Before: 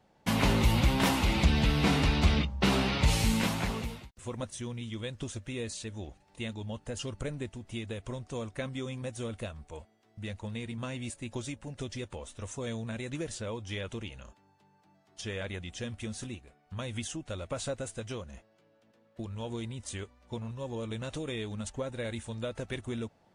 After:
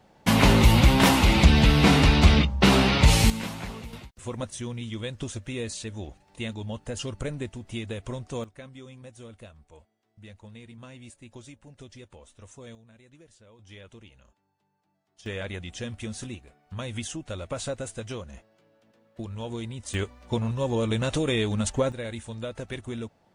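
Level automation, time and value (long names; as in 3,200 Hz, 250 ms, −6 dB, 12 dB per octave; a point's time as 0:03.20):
+8 dB
from 0:03.30 −4 dB
from 0:03.93 +4 dB
from 0:08.44 −8 dB
from 0:12.75 −18 dB
from 0:13.59 −10 dB
from 0:15.26 +3 dB
from 0:19.94 +11 dB
from 0:21.92 +1.5 dB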